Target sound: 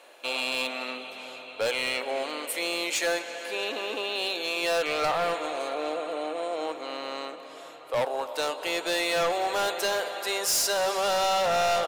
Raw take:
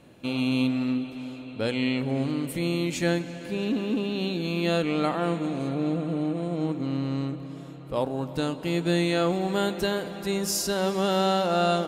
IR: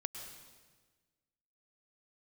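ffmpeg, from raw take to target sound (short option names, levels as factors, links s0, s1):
-filter_complex "[0:a]highpass=f=540:w=0.5412,highpass=f=540:w=1.3066,volume=28.2,asoftclip=hard,volume=0.0355,asplit=2[s0][s1];[s1]asplit=4[s2][s3][s4][s5];[s2]adelay=222,afreqshift=-42,volume=0.0631[s6];[s3]adelay=444,afreqshift=-84,volume=0.0389[s7];[s4]adelay=666,afreqshift=-126,volume=0.0243[s8];[s5]adelay=888,afreqshift=-168,volume=0.015[s9];[s6][s7][s8][s9]amix=inputs=4:normalize=0[s10];[s0][s10]amix=inputs=2:normalize=0,volume=2.24"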